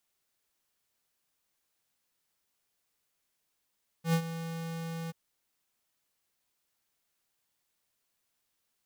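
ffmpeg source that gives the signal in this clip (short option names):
-f lavfi -i "aevalsrc='0.0596*(2*lt(mod(165*t,1),0.5)-1)':d=1.083:s=44100,afade=t=in:d=0.096,afade=t=out:st=0.096:d=0.076:silence=0.224,afade=t=out:st=1.06:d=0.023"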